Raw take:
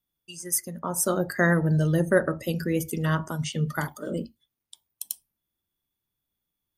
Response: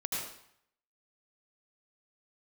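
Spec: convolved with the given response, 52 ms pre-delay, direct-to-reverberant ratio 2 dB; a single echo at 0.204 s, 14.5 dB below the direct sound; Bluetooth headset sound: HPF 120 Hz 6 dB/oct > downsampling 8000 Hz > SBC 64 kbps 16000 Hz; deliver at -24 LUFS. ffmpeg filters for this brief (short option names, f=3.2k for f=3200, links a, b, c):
-filter_complex "[0:a]aecho=1:1:204:0.188,asplit=2[a][b];[1:a]atrim=start_sample=2205,adelay=52[c];[b][c]afir=irnorm=-1:irlink=0,volume=-6.5dB[d];[a][d]amix=inputs=2:normalize=0,highpass=f=120:p=1,aresample=8000,aresample=44100,volume=1dB" -ar 16000 -c:a sbc -b:a 64k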